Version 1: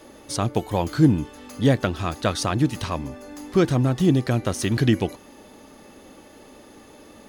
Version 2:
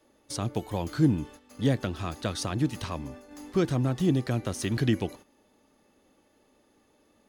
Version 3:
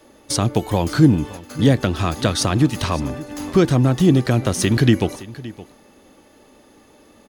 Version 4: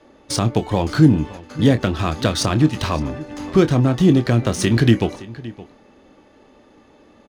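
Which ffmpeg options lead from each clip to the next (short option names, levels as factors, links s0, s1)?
-filter_complex "[0:a]agate=range=0.251:threshold=0.0112:ratio=16:detection=peak,acrossover=split=380|2800[s0][s1][s2];[s1]alimiter=limit=0.133:level=0:latency=1:release=88[s3];[s0][s3][s2]amix=inputs=3:normalize=0,volume=0.501"
-filter_complex "[0:a]asplit=2[s0][s1];[s1]acompressor=threshold=0.0224:ratio=6,volume=1.12[s2];[s0][s2]amix=inputs=2:normalize=0,aecho=1:1:568:0.126,volume=2.51"
-filter_complex "[0:a]adynamicsmooth=sensitivity=4.5:basefreq=4600,asplit=2[s0][s1];[s1]adelay=26,volume=0.282[s2];[s0][s2]amix=inputs=2:normalize=0"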